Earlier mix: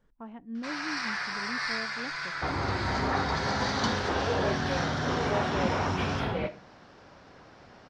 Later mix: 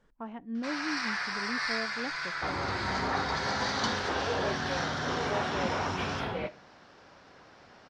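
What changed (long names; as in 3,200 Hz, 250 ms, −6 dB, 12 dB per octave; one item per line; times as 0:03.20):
speech +5.0 dB
second sound: send −6.0 dB
master: add low-shelf EQ 250 Hz −6 dB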